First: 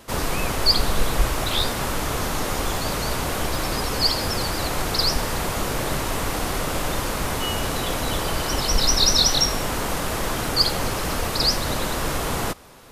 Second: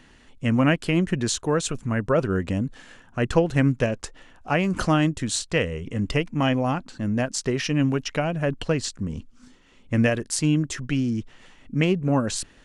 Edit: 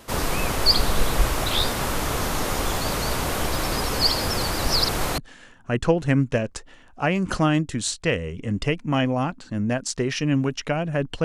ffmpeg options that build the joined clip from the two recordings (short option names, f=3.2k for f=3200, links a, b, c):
-filter_complex "[0:a]apad=whole_dur=11.24,atrim=end=11.24,asplit=2[a][b];[a]atrim=end=4.652[c];[b]atrim=start=4.648:end=5.182,asetpts=PTS-STARTPTS,areverse[d];[1:a]atrim=start=2.658:end=8.72[e];[c][d]acrossfade=d=0.004:c1=hsin:c2=hsin[f];[f][e]acrossfade=d=0.004:c1=hsin:c2=hsin"